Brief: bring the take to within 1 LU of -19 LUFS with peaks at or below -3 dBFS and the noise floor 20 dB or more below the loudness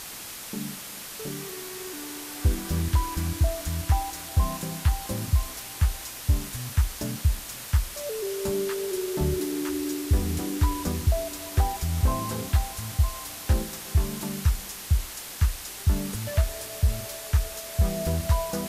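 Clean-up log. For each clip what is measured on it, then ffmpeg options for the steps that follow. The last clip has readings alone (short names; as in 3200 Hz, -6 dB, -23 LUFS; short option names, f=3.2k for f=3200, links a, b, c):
noise floor -39 dBFS; noise floor target -49 dBFS; loudness -28.5 LUFS; peak -11.0 dBFS; loudness target -19.0 LUFS
-> -af "afftdn=nr=10:nf=-39"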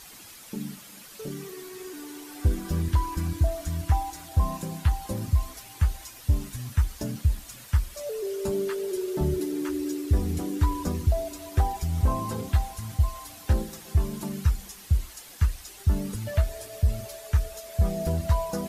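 noise floor -47 dBFS; noise floor target -49 dBFS
-> -af "afftdn=nr=6:nf=-47"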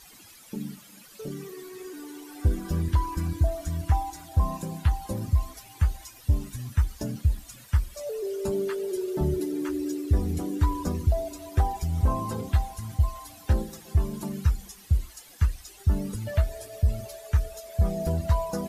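noise floor -51 dBFS; loudness -28.5 LUFS; peak -11.5 dBFS; loudness target -19.0 LUFS
-> -af "volume=9.5dB,alimiter=limit=-3dB:level=0:latency=1"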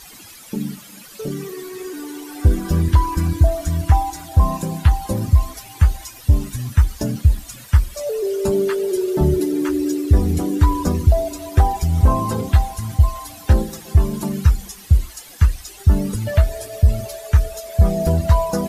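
loudness -19.5 LUFS; peak -3.0 dBFS; noise floor -41 dBFS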